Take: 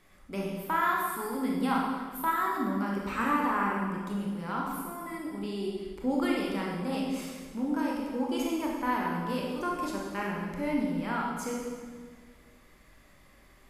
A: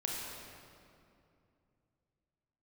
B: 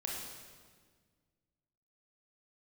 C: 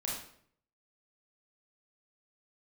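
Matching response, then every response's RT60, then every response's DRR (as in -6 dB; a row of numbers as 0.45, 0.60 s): B; 2.6, 1.6, 0.60 s; -3.0, -3.0, -4.5 dB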